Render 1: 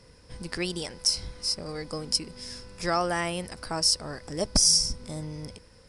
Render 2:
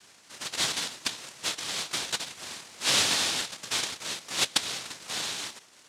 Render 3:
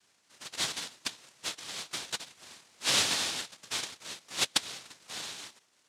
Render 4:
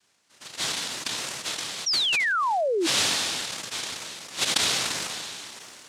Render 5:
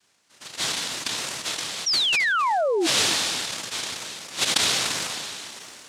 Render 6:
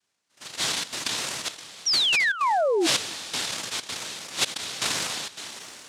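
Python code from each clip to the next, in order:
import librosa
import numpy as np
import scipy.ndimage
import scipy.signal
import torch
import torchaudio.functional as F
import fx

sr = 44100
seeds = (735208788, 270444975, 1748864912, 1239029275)

y1 = fx.env_lowpass_down(x, sr, base_hz=2200.0, full_db=-22.0)
y1 = fx.noise_vocoder(y1, sr, seeds[0], bands=1)
y1 = fx.dynamic_eq(y1, sr, hz=3700.0, q=1.8, threshold_db=-44.0, ratio=4.0, max_db=6)
y2 = fx.upward_expand(y1, sr, threshold_db=-44.0, expansion=1.5)
y2 = F.gain(torch.from_numpy(y2), -2.0).numpy()
y3 = fx.rider(y2, sr, range_db=4, speed_s=2.0)
y3 = fx.spec_paint(y3, sr, seeds[1], shape='fall', start_s=1.86, length_s=1.01, low_hz=310.0, high_hz=5900.0, level_db=-24.0)
y3 = fx.sustainer(y3, sr, db_per_s=21.0)
y4 = y3 + 10.0 ** (-15.5 / 20.0) * np.pad(y3, (int(265 * sr / 1000.0), 0))[:len(y3)]
y4 = F.gain(torch.from_numpy(y4), 2.0).numpy()
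y5 = fx.step_gate(y4, sr, bpm=162, pattern='....xxxxx.xxxxxx', floor_db=-12.0, edge_ms=4.5)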